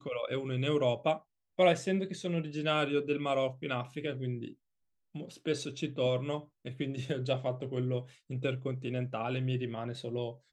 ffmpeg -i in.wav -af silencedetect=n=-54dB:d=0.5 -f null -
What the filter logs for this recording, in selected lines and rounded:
silence_start: 4.54
silence_end: 5.15 | silence_duration: 0.60